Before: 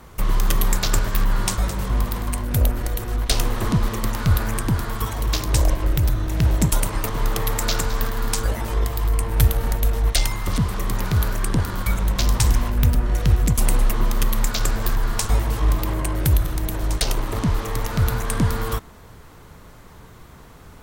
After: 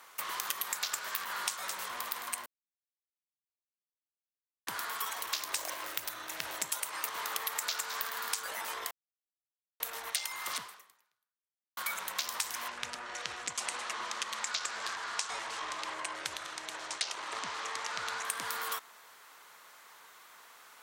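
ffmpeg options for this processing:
-filter_complex "[0:a]asettb=1/sr,asplit=3[s0][s1][s2];[s0]atrim=end=5.524[s3];[s1]atrim=start=5.52:end=6.04,asetpts=PTS-STARTPTS,afade=t=in:d=0.004:c=qsin,afade=t=out:st=0.516:d=0.004:c=qsin,acrusher=bits=7:mode=log:mix=0:aa=0.000001[s4];[s2]atrim=start=6.036[s5];[s3][s4]acrossfade=d=0.004:c1=hsin:c2=qsin[s6];[s6][s5]acrossfade=d=0.004:c1=qsin:c2=hsin,asettb=1/sr,asplit=3[s7][s8][s9];[s7]atrim=end=12.684[s10];[s8]atrim=start=12.68:end=18.25,asetpts=PTS-STARTPTS,afade=t=in:d=0.004:c=qsin,afade=t=out:st=5.566:d=0.004:c=qsin,lowpass=f=7700:w=0.5412,lowpass=f=7700:w=1.3066[s11];[s9]atrim=start=18.246[s12];[s10][s11]acrossfade=d=0.004:c1=hsin:c2=qsin[s13];[s13][s12]acrossfade=d=0.004:c1=qsin:c2=hsin,asplit=6[s14][s15][s16][s17][s18][s19];[s14]atrim=end=2.46,asetpts=PTS-STARTPTS,afade=t=out:st=2.456:d=0.004:c=hsin[s20];[s15]atrim=start=2.46:end=4.67,asetpts=PTS-STARTPTS,volume=0[s21];[s16]atrim=start=4.67:end=8.91,asetpts=PTS-STARTPTS,afade=t=in:d=0.004:c=hsin,afade=t=out:st=4.236:d=0.004:c=hsin[s22];[s17]atrim=start=8.91:end=9.8,asetpts=PTS-STARTPTS,volume=0[s23];[s18]atrim=start=9.8:end=11.77,asetpts=PTS-STARTPTS,afade=t=in:d=0.004:c=hsin,afade=t=out:st=0.77:d=1.2:c=exp[s24];[s19]atrim=start=11.77,asetpts=PTS-STARTPTS,afade=t=in:d=0.004:c=hsin[s25];[s20][s21][s22][s23][s24][s25]concat=n=6:v=0:a=1,highpass=1100,acompressor=threshold=0.0398:ratio=6,volume=0.75"

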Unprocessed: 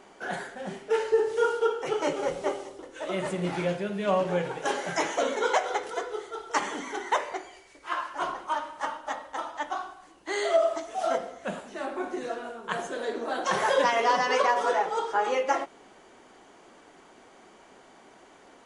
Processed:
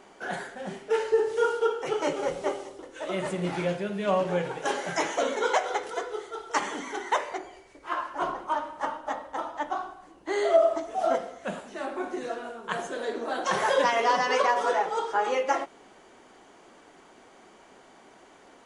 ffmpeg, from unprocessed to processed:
-filter_complex "[0:a]asettb=1/sr,asplit=3[s0][s1][s2];[s0]atrim=end=7.384[s3];[s1]atrim=start=7.38:end=11.15,asetpts=PTS-STARTPTS,afade=t=in:d=0.004:c=qsin,afade=t=out:st=3.766:d=0.004:c=qsin,tiltshelf=f=1200:g=5[s4];[s2]atrim=start=11.146[s5];[s3][s4]acrossfade=d=0.004:c1=hsin:c2=qsin[s6];[s6][s5]acrossfade=d=0.004:c1=qsin:c2=hsin"

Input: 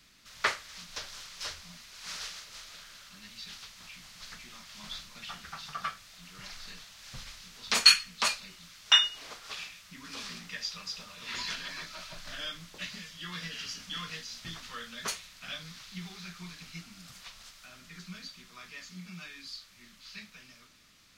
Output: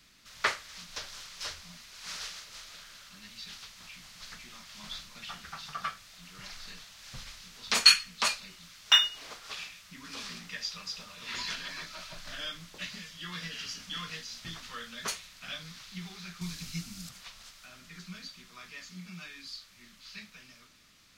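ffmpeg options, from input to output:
-filter_complex "[0:a]asettb=1/sr,asplit=3[s0][s1][s2];[s0]atrim=end=8.634[s3];[s1]atrim=start=8.63:end=9.37,asetpts=PTS-STARTPTS,afade=t=in:d=0.004:c=qsin,afade=t=out:st=0.736:d=0.004:c=qsin,acrusher=bits=7:mode=log:mix=0:aa=0.000001[s4];[s2]atrim=start=9.366[s5];[s3][s4]acrossfade=d=0.004:c1=hsin:c2=qsin[s6];[s6][s5]acrossfade=d=0.004:c1=qsin:c2=hsin,asettb=1/sr,asplit=3[s7][s8][s9];[s7]atrim=end=16.414[s10];[s8]atrim=start=16.41:end=17.09,asetpts=PTS-STARTPTS,afade=t=in:d=0.004:c=qsin,afade=t=out:st=0.676:d=0.004:c=qsin,bass=f=250:g=10,treble=f=4000:g=10[s11];[s9]atrim=start=17.086[s12];[s10][s11]acrossfade=d=0.004:c1=hsin:c2=qsin[s13];[s13][s12]acrossfade=d=0.004:c1=qsin:c2=hsin"

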